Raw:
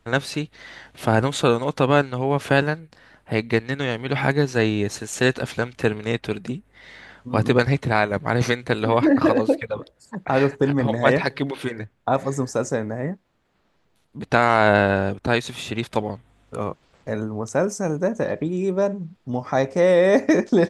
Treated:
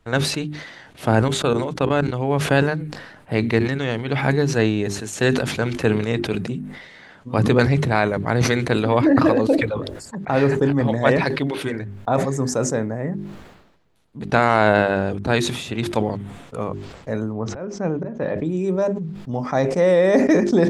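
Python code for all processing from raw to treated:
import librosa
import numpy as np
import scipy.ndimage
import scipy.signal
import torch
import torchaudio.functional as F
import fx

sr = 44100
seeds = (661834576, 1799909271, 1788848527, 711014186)

y = fx.chain(x, sr, fx.hum_notches(base_hz=50, count=5),
    fx.level_steps(step_db=18), at=(1.28, 2.12))
y = fx.chain(y, sr, fx.lowpass(hz=4000.0, slope=24),
    fx.auto_swell(attack_ms=244.0), at=(17.33, 18.38))
y = fx.low_shelf(y, sr, hz=490.0, db=4.0)
y = fx.hum_notches(y, sr, base_hz=50, count=8)
y = fx.sustainer(y, sr, db_per_s=54.0)
y = F.gain(torch.from_numpy(y), -1.5).numpy()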